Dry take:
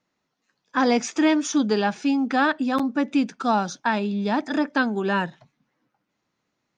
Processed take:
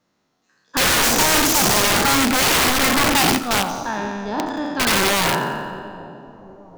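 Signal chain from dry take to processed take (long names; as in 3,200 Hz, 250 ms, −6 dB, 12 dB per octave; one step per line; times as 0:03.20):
peak hold with a decay on every bin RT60 1.83 s
0:03.38–0:04.87: noise gate −16 dBFS, range −10 dB
parametric band 2,200 Hz −4.5 dB 0.87 octaves
wrap-around overflow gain 16.5 dB
echo with a time of its own for lows and highs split 860 Hz, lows 736 ms, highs 88 ms, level −15.5 dB
level +5 dB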